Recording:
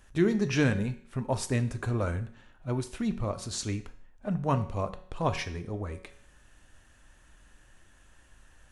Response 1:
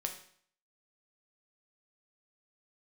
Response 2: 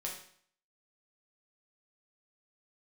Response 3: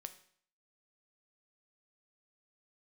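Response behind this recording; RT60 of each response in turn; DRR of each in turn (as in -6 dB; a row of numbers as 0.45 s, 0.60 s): 3; 0.55 s, 0.55 s, 0.55 s; 3.0 dB, -2.5 dB, 8.5 dB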